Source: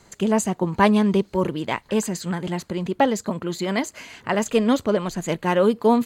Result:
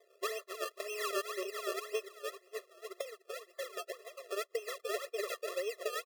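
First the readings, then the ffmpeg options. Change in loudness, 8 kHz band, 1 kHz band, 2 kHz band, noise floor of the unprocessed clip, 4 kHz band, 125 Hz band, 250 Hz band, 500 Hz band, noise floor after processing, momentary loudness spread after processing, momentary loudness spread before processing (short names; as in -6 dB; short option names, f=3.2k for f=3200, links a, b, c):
-17.5 dB, -13.0 dB, -19.0 dB, -12.5 dB, -54 dBFS, -10.5 dB, under -40 dB, under -30 dB, -15.5 dB, -70 dBFS, 9 LU, 10 LU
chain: -filter_complex "[0:a]aeval=exprs='val(0)+0.5*0.133*sgn(val(0))':c=same,agate=range=-45dB:threshold=-14dB:ratio=16:detection=peak,highshelf=f=4.7k:g=-7.5,aecho=1:1:291|582|873|1164:0.282|0.11|0.0429|0.0167,acompressor=threshold=-28dB:ratio=5,alimiter=level_in=5dB:limit=-24dB:level=0:latency=1:release=417,volume=-5dB,acrossover=split=260[a][b];[b]acompressor=threshold=-46dB:ratio=6[c];[a][c]amix=inputs=2:normalize=0,tremolo=f=7.7:d=0.47,adynamicequalizer=threshold=0.00158:dfrequency=140:dqfactor=0.76:tfrequency=140:tqfactor=0.76:attack=5:release=100:ratio=0.375:range=3.5:mode=boostabove:tftype=bell,acrusher=samples=30:mix=1:aa=0.000001:lfo=1:lforange=30:lforate=1.9,afftfilt=real='re*eq(mod(floor(b*sr/1024/350),2),1)':imag='im*eq(mod(floor(b*sr/1024/350),2),1)':win_size=1024:overlap=0.75,volume=11.5dB"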